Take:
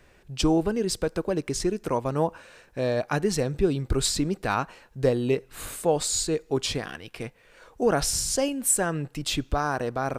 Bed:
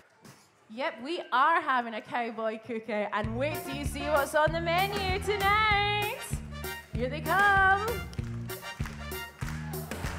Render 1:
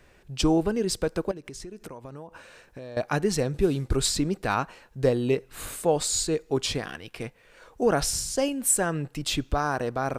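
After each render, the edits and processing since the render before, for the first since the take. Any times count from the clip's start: 1.31–2.97 compressor 16:1, threshold -36 dBFS; 3.54–3.96 CVSD 64 kbps; 7.89–8.37 fade out equal-power, to -7 dB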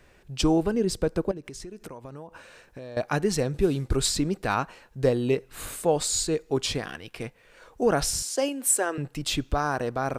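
0.74–1.43 tilt shelf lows +3.5 dB, about 690 Hz; 8.22–8.98 steep high-pass 270 Hz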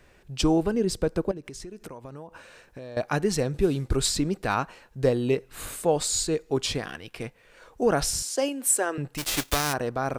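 9.17–9.72 spectral whitening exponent 0.3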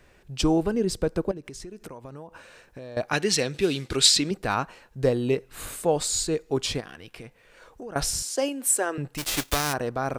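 3.13–4.31 weighting filter D; 6.8–7.96 compressor 4:1, threshold -38 dBFS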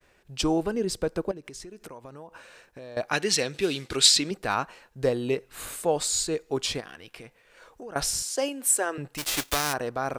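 expander -53 dBFS; low shelf 280 Hz -7 dB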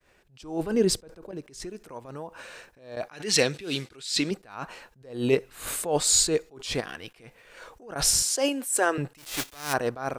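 AGC gain up to 6.5 dB; attack slew limiter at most 120 dB/s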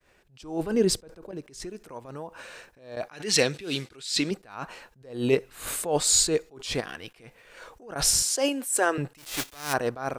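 nothing audible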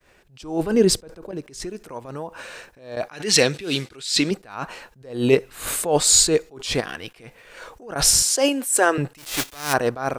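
gain +6 dB; limiter -2 dBFS, peak gain reduction 2 dB

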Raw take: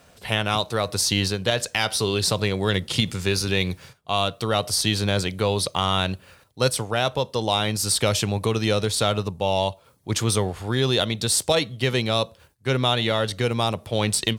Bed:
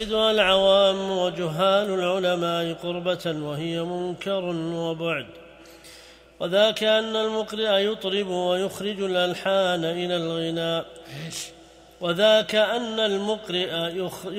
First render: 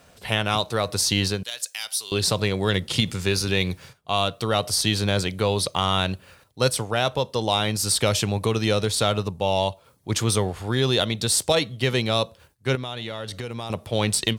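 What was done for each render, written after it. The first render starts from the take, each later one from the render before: 1.43–2.12 differentiator; 12.75–13.7 compressor 5:1, threshold -28 dBFS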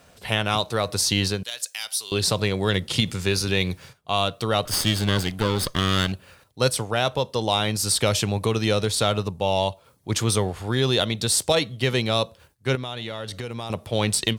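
4.65–6.12 minimum comb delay 0.62 ms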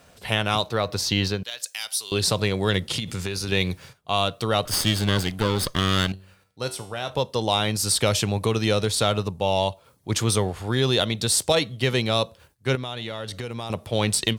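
0.68–1.64 bell 9500 Hz -11 dB 0.92 oct; 2.96–3.52 compressor, threshold -24 dBFS; 6.12–7.1 resonator 95 Hz, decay 0.52 s, mix 70%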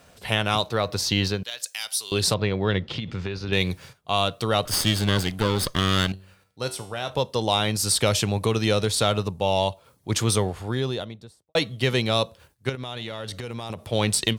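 2.34–3.53 air absorption 230 m; 10.32–11.55 studio fade out; 12.69–13.8 compressor, threshold -27 dBFS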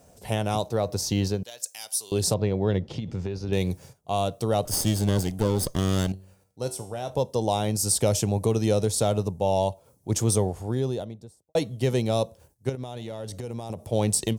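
band shelf 2200 Hz -12 dB 2.3 oct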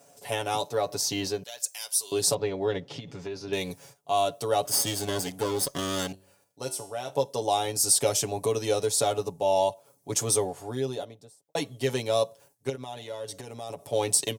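HPF 560 Hz 6 dB/oct; comb 7.1 ms, depth 81%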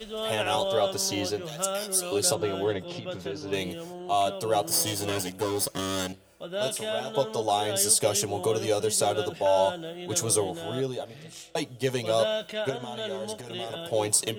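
add bed -11.5 dB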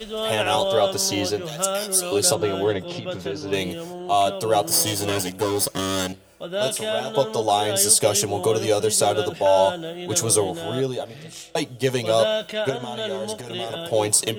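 gain +5.5 dB; limiter -3 dBFS, peak gain reduction 1 dB

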